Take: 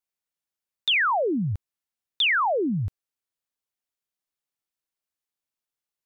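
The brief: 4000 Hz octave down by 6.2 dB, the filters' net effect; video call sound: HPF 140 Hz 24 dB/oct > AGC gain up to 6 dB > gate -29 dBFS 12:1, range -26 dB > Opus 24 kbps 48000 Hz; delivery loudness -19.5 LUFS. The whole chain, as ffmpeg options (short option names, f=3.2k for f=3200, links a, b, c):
-af "highpass=f=140:w=0.5412,highpass=f=140:w=1.3066,equalizer=f=4k:t=o:g=-9,dynaudnorm=m=6dB,agate=range=-26dB:threshold=-29dB:ratio=12,volume=5.5dB" -ar 48000 -c:a libopus -b:a 24k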